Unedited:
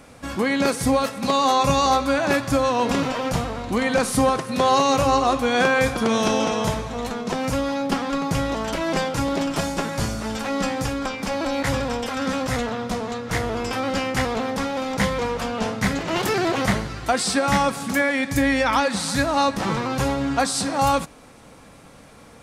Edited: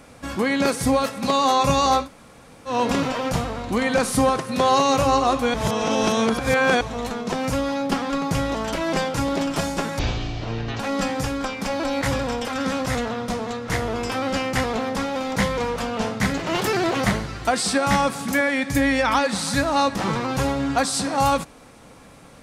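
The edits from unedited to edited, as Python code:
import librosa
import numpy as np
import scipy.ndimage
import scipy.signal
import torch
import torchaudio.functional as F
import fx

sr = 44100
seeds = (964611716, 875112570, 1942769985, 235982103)

y = fx.edit(x, sr, fx.room_tone_fill(start_s=2.04, length_s=0.66, crossfade_s=0.1),
    fx.reverse_span(start_s=5.54, length_s=1.27),
    fx.speed_span(start_s=9.99, length_s=0.42, speed=0.52), tone=tone)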